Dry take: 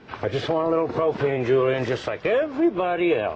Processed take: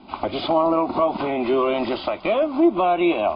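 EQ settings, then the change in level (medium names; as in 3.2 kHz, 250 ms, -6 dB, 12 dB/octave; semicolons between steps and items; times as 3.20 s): Chebyshev low-pass 5 kHz, order 10; dynamic bell 1.6 kHz, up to +5 dB, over -39 dBFS, Q 0.92; static phaser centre 460 Hz, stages 6; +6.0 dB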